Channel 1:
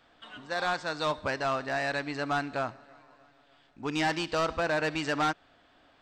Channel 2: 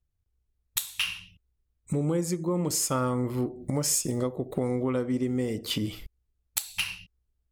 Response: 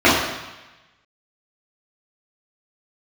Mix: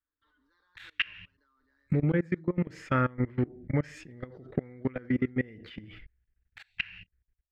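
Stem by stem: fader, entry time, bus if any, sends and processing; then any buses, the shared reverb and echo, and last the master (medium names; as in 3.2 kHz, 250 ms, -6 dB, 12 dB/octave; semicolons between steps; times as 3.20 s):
-13.0 dB, 0.00 s, no send, steep high-pass 200 Hz 96 dB/octave; static phaser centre 2.6 kHz, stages 6; comb 6.7 ms, depth 85%; auto duck -13 dB, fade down 1.85 s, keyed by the second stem
-4.5 dB, 0.00 s, no send, FFT filter 130 Hz 0 dB, 1.1 kHz -8 dB, 1.7 kHz +14 dB, 10 kHz -28 dB; level rider gain up to 9.5 dB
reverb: none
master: treble shelf 3.4 kHz -11.5 dB; level held to a coarse grid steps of 24 dB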